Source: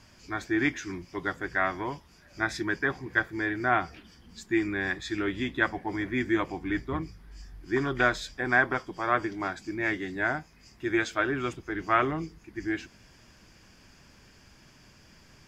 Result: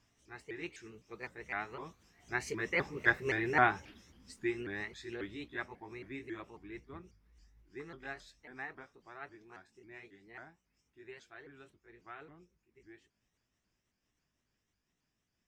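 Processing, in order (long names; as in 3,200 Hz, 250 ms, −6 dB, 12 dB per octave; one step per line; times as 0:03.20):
pitch shifter swept by a sawtooth +4 semitones, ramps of 263 ms
source passing by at 0:03.28, 12 m/s, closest 6 metres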